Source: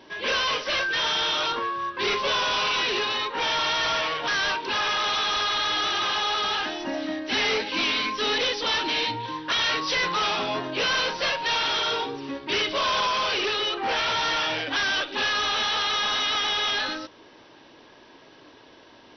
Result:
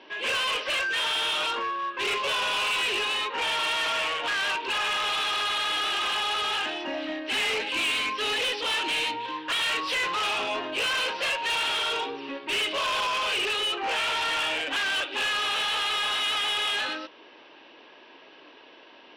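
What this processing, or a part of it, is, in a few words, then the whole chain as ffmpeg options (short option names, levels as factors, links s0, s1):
intercom: -af "highpass=310,lowpass=3700,equalizer=f=2700:t=o:w=0.45:g=8,asoftclip=type=tanh:threshold=0.0708"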